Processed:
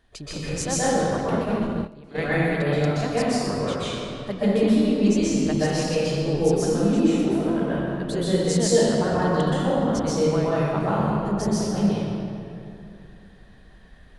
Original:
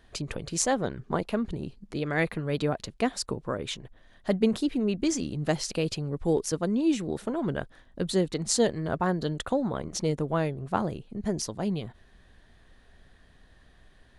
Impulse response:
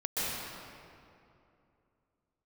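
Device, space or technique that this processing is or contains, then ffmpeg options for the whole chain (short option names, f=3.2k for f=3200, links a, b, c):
stairwell: -filter_complex "[1:a]atrim=start_sample=2205[a];[0:a][a]afir=irnorm=-1:irlink=0,asplit=3[b][c][d];[b]afade=t=out:st=1.35:d=0.02[e];[c]agate=range=-16dB:threshold=-21dB:ratio=16:detection=peak,afade=t=in:st=1.35:d=0.02,afade=t=out:st=2.17:d=0.02[f];[d]afade=t=in:st=2.17:d=0.02[g];[e][f][g]amix=inputs=3:normalize=0,volume=-2.5dB"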